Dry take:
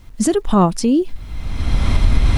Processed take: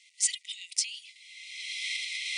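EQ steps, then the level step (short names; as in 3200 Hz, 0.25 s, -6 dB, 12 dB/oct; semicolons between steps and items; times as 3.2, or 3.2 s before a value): brick-wall FIR band-pass 1900–9900 Hz; 0.0 dB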